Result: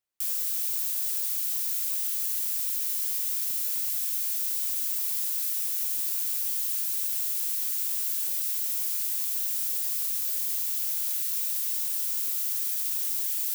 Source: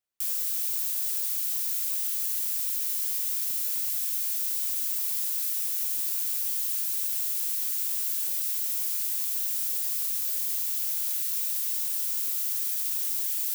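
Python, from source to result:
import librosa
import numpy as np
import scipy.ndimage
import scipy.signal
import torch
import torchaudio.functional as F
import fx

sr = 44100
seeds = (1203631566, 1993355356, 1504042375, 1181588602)

y = fx.highpass(x, sr, hz=130.0, slope=12, at=(4.63, 5.66))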